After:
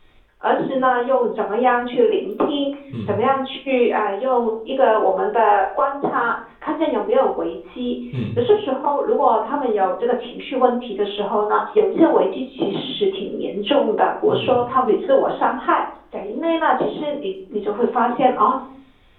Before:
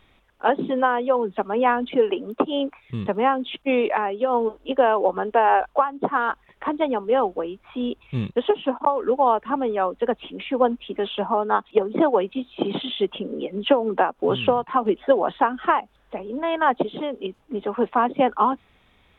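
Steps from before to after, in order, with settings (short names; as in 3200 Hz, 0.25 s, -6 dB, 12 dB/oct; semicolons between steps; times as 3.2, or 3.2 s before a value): shoebox room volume 46 m³, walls mixed, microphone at 0.85 m; gain -2 dB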